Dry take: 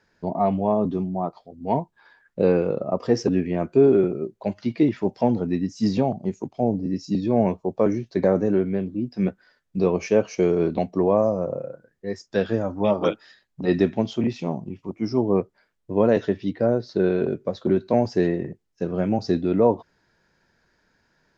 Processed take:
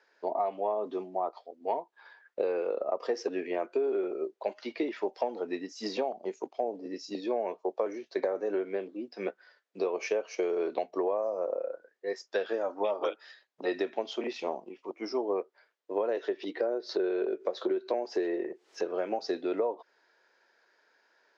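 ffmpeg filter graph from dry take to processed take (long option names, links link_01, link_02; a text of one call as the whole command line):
ffmpeg -i in.wav -filter_complex "[0:a]asettb=1/sr,asplit=3[link_01][link_02][link_03];[link_01]atrim=end=16.094[link_04];[link_02]atrim=start=16.09:end=18.85,asetpts=PTS-STARTPTS,afade=type=in:duration=0.004:curve=qsin,afade=type=out:start_time=2.756:duration=0.004:curve=qsin,equalizer=frequency=360:width=3.6:gain=6,acompressor=mode=upward:threshold=-23dB:ratio=2.5:attack=3.2:release=140:knee=2.83:detection=peak[link_05];[link_03]atrim=start=18.846[link_06];[link_04][link_05]acrossfade=duration=0.004:curve1=hsin:curve2=qsin[link_07];[link_07][link_06]acrossfade=duration=0.004:curve1=qsin:curve2=hsin,highpass=frequency=400:width=0.5412,highpass=frequency=400:width=1.3066,acompressor=threshold=-26dB:ratio=12,lowpass=5600" out.wav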